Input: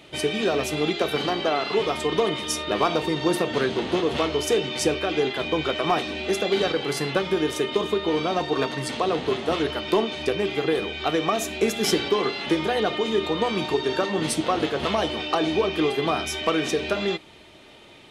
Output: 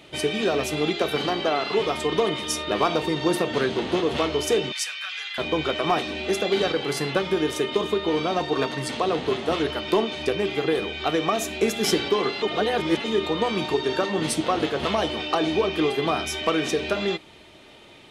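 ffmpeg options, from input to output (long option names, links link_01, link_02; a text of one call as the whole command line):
ffmpeg -i in.wav -filter_complex "[0:a]asettb=1/sr,asplit=3[link_01][link_02][link_03];[link_01]atrim=end=4.724[link_04];[link_02]atrim=start=4.72:end=5.38,asetpts=PTS-STARTPTS,afade=type=in:duration=0.004:curve=qsin,afade=type=out:start_time=0.656:duration=0.004:curve=qsin,highpass=frequency=1400:width=0.5412,highpass=frequency=1400:width=1.3066[link_05];[link_03]atrim=start=5.376[link_06];[link_04][link_05]acrossfade=duration=0.004:curve1=hsin:curve2=qsin[link_07];[link_07][link_06]acrossfade=duration=0.004:curve1=qsin:curve2=hsin,asplit=3[link_08][link_09][link_10];[link_08]atrim=end=12.422[link_11];[link_09]atrim=start=12.418:end=13.042,asetpts=PTS-STARTPTS,areverse[link_12];[link_10]atrim=start=13.038[link_13];[link_11][link_12]acrossfade=duration=0.004:curve1=hsin:curve2=hsin[link_14];[link_14][link_13]acrossfade=duration=0.004:curve1=hsin:curve2=hsin" out.wav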